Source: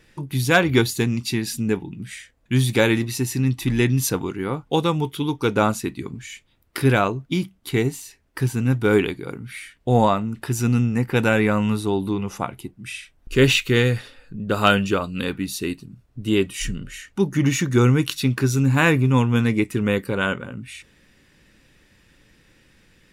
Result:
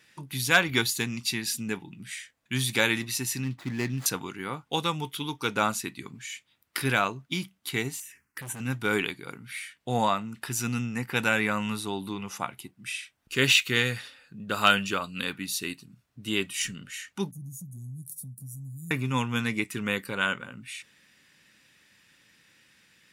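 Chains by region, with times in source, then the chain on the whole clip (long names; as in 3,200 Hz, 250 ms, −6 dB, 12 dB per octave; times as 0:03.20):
0:03.44–0:04.06: running median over 15 samples + high-shelf EQ 4,100 Hz −7.5 dB
0:08.00–0:08.60: phaser swept by the level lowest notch 550 Hz, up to 4,700 Hz, full sweep at −22 dBFS + hard clipping −27.5 dBFS + level that may fall only so fast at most 91 dB per second
0:17.31–0:18.91: elliptic band-stop filter 170–9,600 Hz, stop band 60 dB + downward compressor 2 to 1, threshold −33 dBFS
whole clip: high-pass filter 200 Hz 12 dB per octave; parametric band 390 Hz −12 dB 2.2 octaves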